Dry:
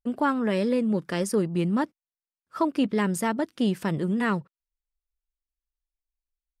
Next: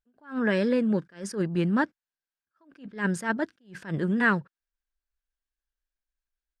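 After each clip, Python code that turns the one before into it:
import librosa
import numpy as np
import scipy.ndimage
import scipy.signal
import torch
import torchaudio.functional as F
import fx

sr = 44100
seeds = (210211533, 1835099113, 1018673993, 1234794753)

y = scipy.signal.sosfilt(scipy.signal.butter(2, 6600.0, 'lowpass', fs=sr, output='sos'), x)
y = fx.peak_eq(y, sr, hz=1600.0, db=13.0, octaves=0.27)
y = fx.attack_slew(y, sr, db_per_s=190.0)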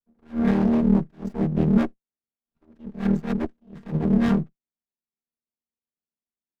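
y = fx.chord_vocoder(x, sr, chord='major triad', root=51)
y = fx.running_max(y, sr, window=33)
y = y * librosa.db_to_amplitude(6.0)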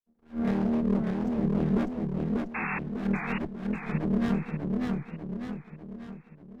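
y = np.minimum(x, 2.0 * 10.0 ** (-14.5 / 20.0) - x)
y = fx.spec_paint(y, sr, seeds[0], shape='noise', start_s=2.54, length_s=0.25, low_hz=730.0, high_hz=2700.0, level_db=-26.0)
y = fx.echo_warbled(y, sr, ms=594, feedback_pct=50, rate_hz=2.8, cents=128, wet_db=-3.0)
y = y * librosa.db_to_amplitude(-6.5)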